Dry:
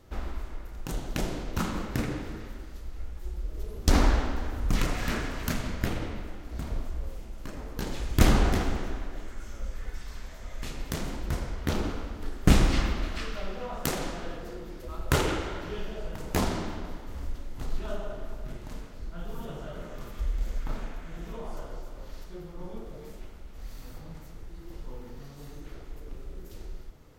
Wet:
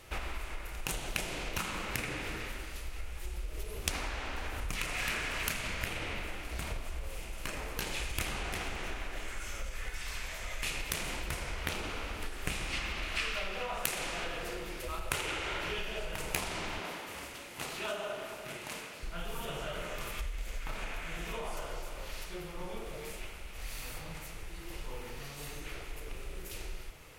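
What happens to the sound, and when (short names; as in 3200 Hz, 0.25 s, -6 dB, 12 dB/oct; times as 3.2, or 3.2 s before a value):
16.8–19.03 HPF 170 Hz
whole clip: low shelf 450 Hz -8 dB; compressor 16:1, threshold -39 dBFS; fifteen-band EQ 250 Hz -6 dB, 2500 Hz +10 dB, 10000 Hz +9 dB; gain +6 dB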